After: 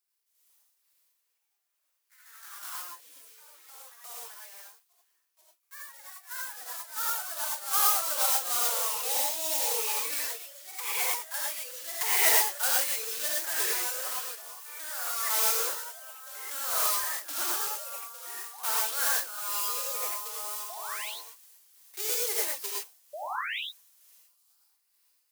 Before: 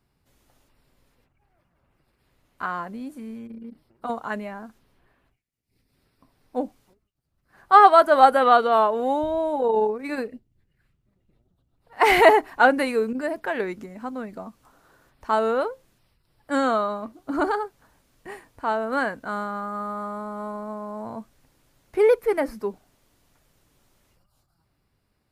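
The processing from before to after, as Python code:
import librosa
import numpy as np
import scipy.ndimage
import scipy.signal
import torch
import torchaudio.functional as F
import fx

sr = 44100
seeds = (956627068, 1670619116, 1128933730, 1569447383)

y = fx.block_float(x, sr, bits=3)
y = scipy.signal.sosfilt(scipy.signal.butter(12, 300.0, 'highpass', fs=sr, output='sos'), y)
y = np.diff(y, prepend=0.0)
y = fx.rider(y, sr, range_db=5, speed_s=0.5)
y = y * (1.0 - 0.61 / 2.0 + 0.61 / 2.0 * np.cos(2.0 * np.pi * 2.2 * (np.arange(len(y)) / sr)))
y = fx.spec_paint(y, sr, seeds[0], shape='rise', start_s=23.13, length_s=0.47, low_hz=560.0, high_hz=4000.0, level_db=-39.0)
y = fx.rev_gated(y, sr, seeds[1], gate_ms=140, shape='rising', drr_db=-4.0)
y = fx.echo_pitch(y, sr, ms=86, semitones=2, count=3, db_per_echo=-6.0)
y = fx.pre_swell(y, sr, db_per_s=31.0, at=(13.89, 16.68))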